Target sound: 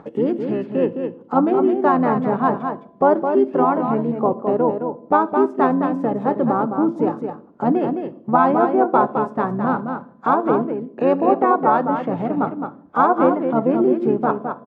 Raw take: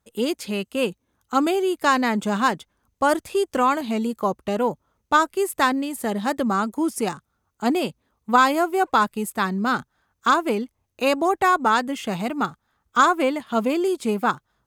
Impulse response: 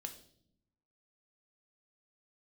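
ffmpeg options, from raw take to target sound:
-filter_complex "[0:a]bandreject=f=336.6:t=h:w=4,bandreject=f=673.2:t=h:w=4,bandreject=f=1.0098k:t=h:w=4,acompressor=mode=upward:threshold=-21dB:ratio=2.5,asplit=2[a][b];[b]asetrate=29433,aresample=44100,atempo=1.49831,volume=-6dB[c];[a][c]amix=inputs=2:normalize=0,asuperpass=centerf=430:order=4:qfactor=0.51,aecho=1:1:213:0.473,asplit=2[d][e];[1:a]atrim=start_sample=2205[f];[e][f]afir=irnorm=-1:irlink=0,volume=-1.5dB[g];[d][g]amix=inputs=2:normalize=0"

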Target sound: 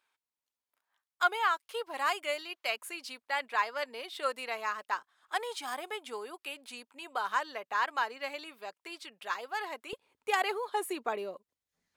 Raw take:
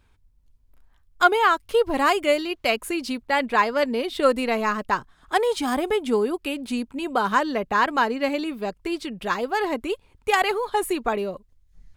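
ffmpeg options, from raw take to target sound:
-af "asetnsamples=n=441:p=0,asendcmd='9.93 highpass f 360',highpass=790,volume=-8.5dB"

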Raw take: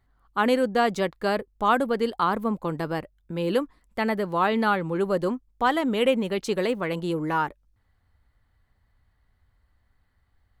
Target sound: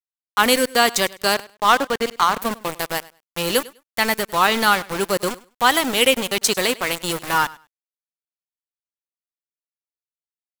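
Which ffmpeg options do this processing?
-filter_complex "[0:a]crystalizer=i=9.5:c=0,asettb=1/sr,asplit=3[a][b][c];[a]atrim=end=1.344[d];[b]atrim=start=1.34:end=2.38,asetpts=PTS-STARTPTS,afade=t=in:d=0.004:c=qsin,afade=t=out:st=1.036:d=0.004:c=qsin,adynamicsmooth=sensitivity=1:basefreq=1.4k[e];[c]atrim=start=2.376[f];[d][e]acrossfade=d=0.004:c1=hsin:c2=qsin[g];[g][f]acrossfade=d=0.004:c1=qsin:c2=hsin,aeval=exprs='val(0)*gte(abs(val(0)),0.0708)':c=same,aecho=1:1:101|202:0.0891|0.016,volume=1dB"

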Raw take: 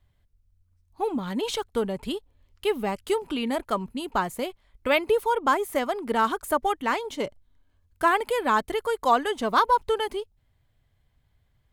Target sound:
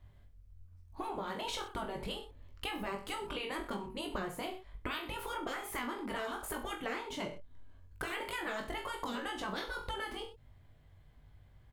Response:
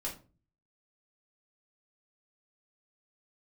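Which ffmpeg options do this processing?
-af "afftfilt=real='re*lt(hypot(re,im),0.224)':imag='im*lt(hypot(re,im),0.224)':win_size=1024:overlap=0.75,highshelf=f=2.5k:g=-8.5,aecho=1:1:20|42|66.2|92.82|122.1:0.631|0.398|0.251|0.158|0.1,acompressor=threshold=-43dB:ratio=4,volume=5.5dB"

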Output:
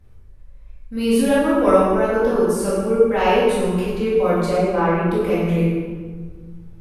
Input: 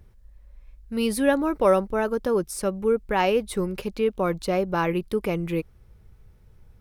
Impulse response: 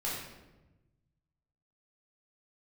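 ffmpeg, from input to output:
-filter_complex "[0:a]asettb=1/sr,asplit=3[a][b][c];[a]atrim=end=4.514[d];[b]atrim=start=4.51:end=5.1,asetpts=PTS-STARTPTS,afade=t=in:d=0.004:c=qsin,afade=t=out:st=0.586:d=0.004:c=qsin,acrossover=split=2600[e][f];[f]acompressor=threshold=-55dB:ratio=4:attack=1:release=60[g];[e][g]amix=inputs=2:normalize=0[h];[c]atrim=start=5.096[i];[d][h]acrossfade=d=0.004:c1=hsin:c2=qsin[j];[j][i]acrossfade=d=0.004:c1=qsin:c2=hsin[k];[1:a]atrim=start_sample=2205,asetrate=26460,aresample=44100[l];[k][l]afir=irnorm=-1:irlink=0,volume=-3dB"

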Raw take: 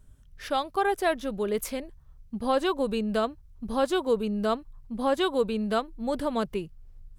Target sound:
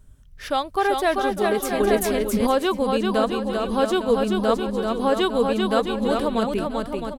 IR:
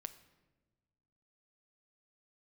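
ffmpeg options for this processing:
-filter_complex "[0:a]aecho=1:1:390|663|854.1|987.9|1082:0.631|0.398|0.251|0.158|0.1,asettb=1/sr,asplit=3[a][b][c];[a]atrim=end=1.804[d];[b]atrim=start=1.8:end=2.47,asetpts=PTS-STARTPTS,afade=t=in:d=0.004:c=qsin,afade=t=out:st=0.666:d=0.004:c=qsin,acontrast=72[e];[c]atrim=start=2.466[f];[d][e]acrossfade=d=0.004:c1=hsin:c2=qsin[g];[g][f]acrossfade=d=0.004:c1=qsin:c2=hsin,volume=4dB"

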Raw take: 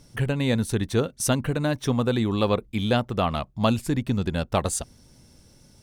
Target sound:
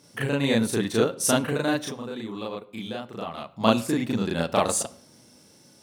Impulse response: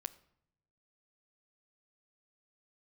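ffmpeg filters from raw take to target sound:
-filter_complex "[0:a]asettb=1/sr,asplit=3[a][b][c];[a]atrim=end=1.744[d];[b]atrim=start=1.74:end=3.46,asetpts=PTS-STARTPTS,afade=t=in:d=0.004:c=qsin,afade=t=out:st=1.716:d=0.004:c=qsin,acompressor=threshold=-32dB:ratio=6[e];[c]atrim=start=3.456[f];[d][e]acrossfade=d=0.004:c1=hsin:c2=qsin[g];[g][f]acrossfade=d=0.004:c1=qsin:c2=hsin,highpass=210,asplit=2[h][i];[1:a]atrim=start_sample=2205,adelay=36[j];[i][j]afir=irnorm=-1:irlink=0,volume=4.5dB[k];[h][k]amix=inputs=2:normalize=0,volume=-1dB"

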